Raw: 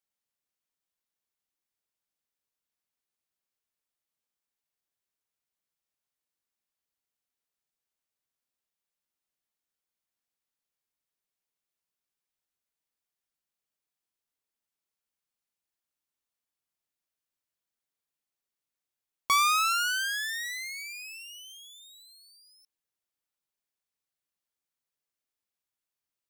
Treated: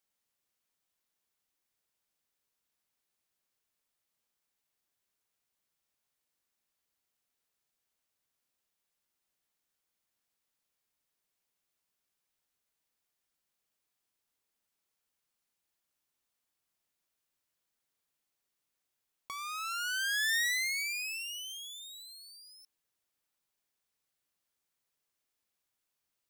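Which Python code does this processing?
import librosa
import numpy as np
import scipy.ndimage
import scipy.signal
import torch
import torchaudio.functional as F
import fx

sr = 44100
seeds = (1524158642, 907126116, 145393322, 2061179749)

y = fx.over_compress(x, sr, threshold_db=-34.0, ratio=-1.0)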